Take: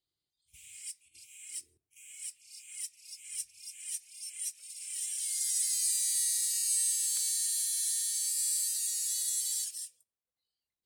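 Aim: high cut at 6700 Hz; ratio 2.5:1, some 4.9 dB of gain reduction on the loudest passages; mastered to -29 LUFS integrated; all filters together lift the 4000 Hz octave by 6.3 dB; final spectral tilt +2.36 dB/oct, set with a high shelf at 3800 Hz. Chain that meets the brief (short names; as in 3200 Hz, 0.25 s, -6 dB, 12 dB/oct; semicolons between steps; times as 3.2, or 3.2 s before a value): LPF 6700 Hz; high shelf 3800 Hz +3.5 dB; bell 4000 Hz +6 dB; compressor 2.5:1, threshold -35 dBFS; gain +6.5 dB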